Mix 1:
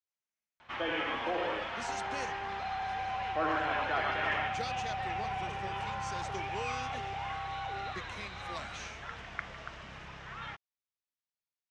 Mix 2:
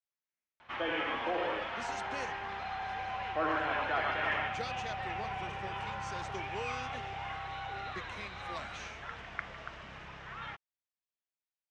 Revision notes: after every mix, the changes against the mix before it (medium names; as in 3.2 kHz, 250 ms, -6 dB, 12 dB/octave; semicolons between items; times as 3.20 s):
second sound -3.5 dB; master: add tone controls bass -2 dB, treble -5 dB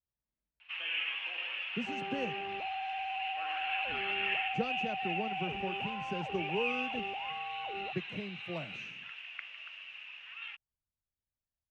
first sound: add resonant high-pass 2.7 kHz, resonance Q 13; master: remove frequency weighting ITU-R 468